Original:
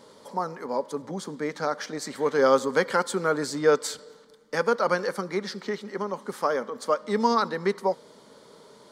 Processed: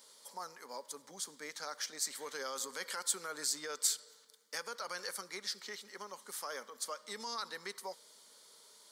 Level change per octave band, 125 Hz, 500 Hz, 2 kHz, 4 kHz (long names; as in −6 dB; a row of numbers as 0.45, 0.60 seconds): below −25 dB, −23.0 dB, −13.0 dB, −3.0 dB